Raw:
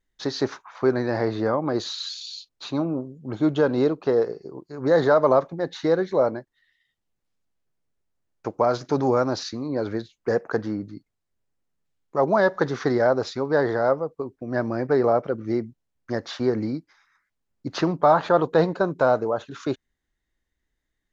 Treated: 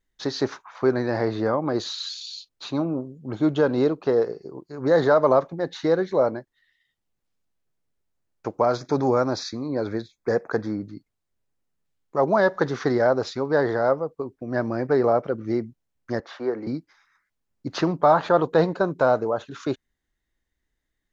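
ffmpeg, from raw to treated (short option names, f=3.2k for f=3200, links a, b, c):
-filter_complex "[0:a]asettb=1/sr,asplit=3[a][b][c];[a]atrim=end=8.754[d];[b]atrim=start=8.75:end=10.82,asetpts=PTS-STARTPTS,afade=t=in:d=0.004:c=qsin,afade=t=out:st=2.066:d=0.004:c=qsin,asuperstop=centerf=2900:order=8:qfactor=4.9[e];[c]atrim=start=10.816[f];[d][e]acrossfade=d=0.004:c1=hsin:c2=qsin[g];[g][f]acrossfade=d=0.004:c1=qsin:c2=hsin,asettb=1/sr,asplit=3[h][i][j];[h]atrim=end=16.204[k];[i]atrim=start=16.2:end=16.67,asetpts=PTS-STARTPTS,afade=t=in:d=0.004:c=qsin,afade=t=out:st=0.466:d=0.004:c=qsin,acrossover=split=320 2300:gain=0.126 1 0.224[l][m][n];[l][m][n]amix=inputs=3:normalize=0[o];[j]atrim=start=16.666[p];[k][o]acrossfade=d=0.004:c1=hsin:c2=qsin[q];[q][p]acrossfade=d=0.004:c1=qsin:c2=hsin"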